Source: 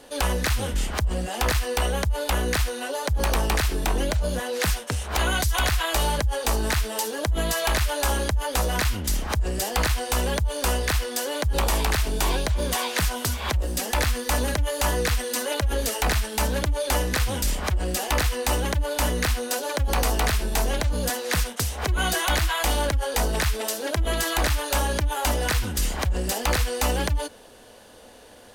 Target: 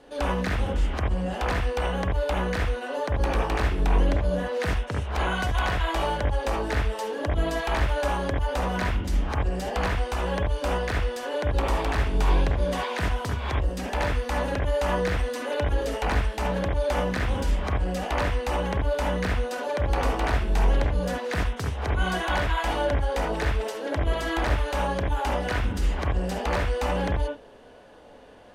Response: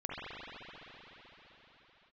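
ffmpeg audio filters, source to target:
-filter_complex "[0:a]aemphasis=mode=reproduction:type=75fm[s0];[1:a]atrim=start_sample=2205,atrim=end_sample=3969[s1];[s0][s1]afir=irnorm=-1:irlink=0"

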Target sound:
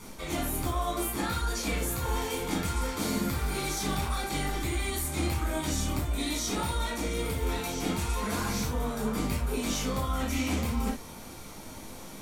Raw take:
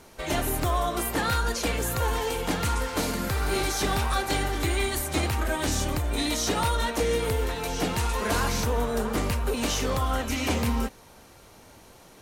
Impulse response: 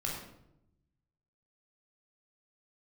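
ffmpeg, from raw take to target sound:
-filter_complex "[0:a]highshelf=f=5000:g=6.5,areverse,acompressor=threshold=0.02:ratio=6,areverse[s0];[1:a]atrim=start_sample=2205,atrim=end_sample=6174,asetrate=74970,aresample=44100[s1];[s0][s1]afir=irnorm=-1:irlink=0,volume=2"

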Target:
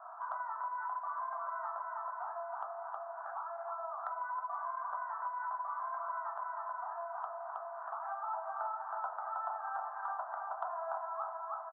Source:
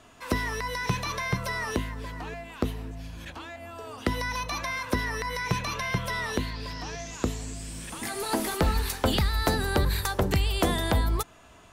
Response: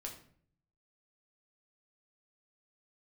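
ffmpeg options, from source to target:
-filter_complex "[0:a]asuperpass=centerf=990:order=12:qfactor=1.3,aecho=1:1:318|636|954|1272|1590:0.531|0.212|0.0849|0.034|0.0136[s0];[1:a]atrim=start_sample=2205[s1];[s0][s1]afir=irnorm=-1:irlink=0,acompressor=threshold=0.002:ratio=4,volume=5.01"

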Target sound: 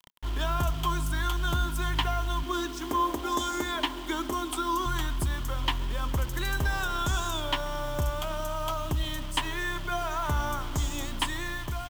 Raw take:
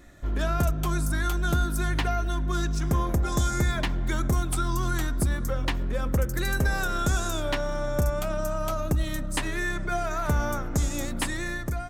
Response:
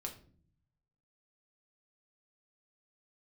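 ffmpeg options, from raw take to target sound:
-filter_complex "[0:a]asettb=1/sr,asplit=3[s0][s1][s2];[s0]atrim=end=2.434[s3];[s1]atrim=start=2.43:end=4.86,asetpts=PTS-STARTPTS,afade=t=in:d=0.004:c=qsin,afade=t=out:st=2.426:d=0.004:c=qsin,lowshelf=f=200:t=q:w=3:g=-13[s4];[s2]atrim=start=4.856[s5];[s3][s4]acrossfade=d=0.004:c1=hsin:c2=qsin[s6];[s6][s5]acrossfade=d=0.004:c1=qsin:c2=hsin,asplit=2[s7][s8];[s8]adelay=136,lowpass=f=1700:p=1,volume=0.126,asplit=2[s9][s10];[s10]adelay=136,lowpass=f=1700:p=1,volume=0.3,asplit=2[s11][s12];[s12]adelay=136,lowpass=f=1700:p=1,volume=0.3[s13];[s7][s9][s11][s13]amix=inputs=4:normalize=0,acrusher=bits=6:mix=0:aa=0.000001,equalizer=f=200:t=o:w=0.33:g=-11,equalizer=f=500:t=o:w=0.33:g=-8,equalizer=f=1000:t=o:w=0.33:g=11,equalizer=f=3150:t=o:w=0.33:g=12,equalizer=f=10000:t=o:w=0.33:g=-3,volume=0.668"

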